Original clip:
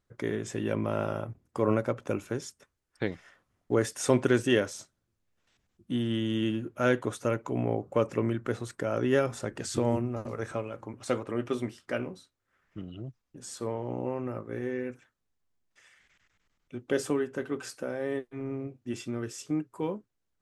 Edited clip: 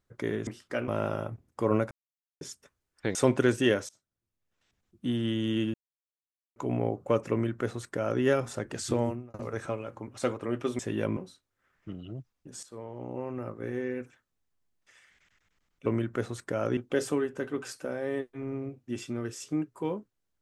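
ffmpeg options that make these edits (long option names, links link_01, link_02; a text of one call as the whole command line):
ffmpeg -i in.wav -filter_complex "[0:a]asplit=15[link_01][link_02][link_03][link_04][link_05][link_06][link_07][link_08][link_09][link_10][link_11][link_12][link_13][link_14][link_15];[link_01]atrim=end=0.472[link_16];[link_02]atrim=start=11.648:end=12.062[link_17];[link_03]atrim=start=0.848:end=1.88,asetpts=PTS-STARTPTS,afade=type=out:start_time=1.028:duration=0.004:curve=hsin[link_18];[link_04]atrim=start=1.88:end=2.38,asetpts=PTS-STARTPTS,volume=0[link_19];[link_05]atrim=start=2.38:end=3.122,asetpts=PTS-STARTPTS,afade=type=in:duration=0.004:curve=hsin[link_20];[link_06]atrim=start=4.008:end=4.75,asetpts=PTS-STARTPTS,afade=type=out:start_time=0.738:duration=0.004:curve=hsin:silence=0.0668344[link_21];[link_07]atrim=start=4.75:end=6.6,asetpts=PTS-STARTPTS,afade=type=in:duration=1.17:silence=0.0668344,afade=type=out:start_time=1.846:duration=0.004:curve=hsin[link_22];[link_08]atrim=start=6.6:end=7.42,asetpts=PTS-STARTPTS,volume=0[link_23];[link_09]atrim=start=7.42:end=10.2,asetpts=PTS-STARTPTS,afade=type=in:duration=0.004:curve=hsin,afade=type=out:start_time=2.41:duration=0.37[link_24];[link_10]atrim=start=10.2:end=11.652,asetpts=PTS-STARTPTS,afade=type=in:duration=0.004:curve=hsin[link_25];[link_11]atrim=start=0.468:end=0.852[link_26];[link_12]atrim=start=12.058:end=13.52,asetpts=PTS-STARTPTS,afade=type=out:start_time=1.458:duration=0.004:curve=hsin:silence=0.223872[link_27];[link_13]atrim=start=13.52:end=16.752,asetpts=PTS-STARTPTS,afade=type=in:duration=0.98:silence=0.223872[link_28];[link_14]atrim=start=8.168:end=9.082[link_29];[link_15]atrim=start=16.748[link_30];[link_16][link_17]acrossfade=duration=0.004:curve1=hsin:curve2=hsin[link_31];[link_18][link_19][link_20]concat=n=3:v=0:a=1[link_32];[link_31][link_32]acrossfade=duration=0.004:curve1=hsin:curve2=hsin[link_33];[link_21][link_22][link_23][link_24][link_25]concat=n=5:v=0:a=1[link_34];[link_33][link_34]acrossfade=duration=0.004:curve1=hsin:curve2=hsin[link_35];[link_35][link_26]acrossfade=duration=0.004:curve1=hsin:curve2=hsin[link_36];[link_27][link_28]concat=n=2:v=0:a=1[link_37];[link_36][link_37]acrossfade=duration=0.004:curve1=hsin:curve2=hsin[link_38];[link_38][link_29]acrossfade=duration=0.004:curve1=hsin:curve2=hsin[link_39];[link_39][link_30]acrossfade=duration=0.004:curve1=hsin:curve2=hsin" out.wav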